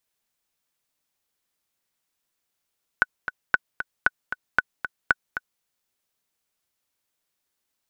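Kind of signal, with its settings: metronome 230 bpm, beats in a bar 2, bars 5, 1490 Hz, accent 10.5 dB -4 dBFS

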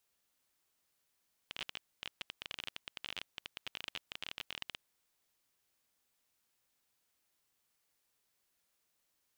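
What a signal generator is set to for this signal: random clicks 21/s -23.5 dBFS 3.33 s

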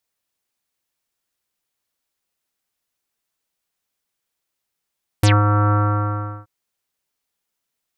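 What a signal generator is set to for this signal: synth note square G#2 24 dB/oct, low-pass 1300 Hz, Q 6.8, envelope 3.5 oct, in 0.10 s, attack 4.3 ms, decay 0.19 s, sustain -5 dB, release 0.74 s, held 0.49 s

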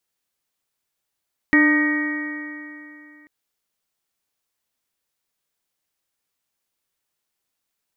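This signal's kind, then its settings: stretched partials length 1.74 s, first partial 298 Hz, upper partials -17/-18/-14.5/-18/0/-12 dB, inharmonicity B 0.0032, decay 2.84 s, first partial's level -13.5 dB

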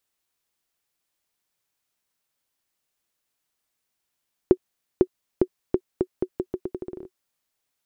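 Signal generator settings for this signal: bouncing ball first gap 0.50 s, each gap 0.81, 368 Hz, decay 62 ms -3.5 dBFS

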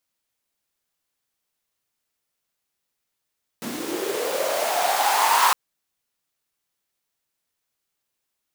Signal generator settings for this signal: swept filtered noise pink, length 1.91 s highpass, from 210 Hz, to 1000 Hz, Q 6.5, linear, gain ramp +14 dB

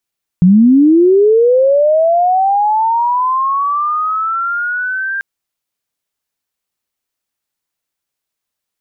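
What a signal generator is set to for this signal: chirp linear 170 Hz -> 1600 Hz -3.5 dBFS -> -16 dBFS 4.79 s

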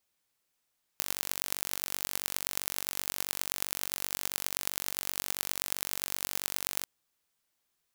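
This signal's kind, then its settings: pulse train 47.6/s, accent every 5, -2 dBFS 5.85 s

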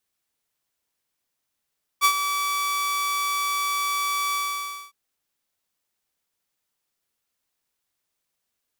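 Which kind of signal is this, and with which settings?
ADSR saw 1150 Hz, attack 39 ms, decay 74 ms, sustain -9.5 dB, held 2.33 s, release 0.579 s -11 dBFS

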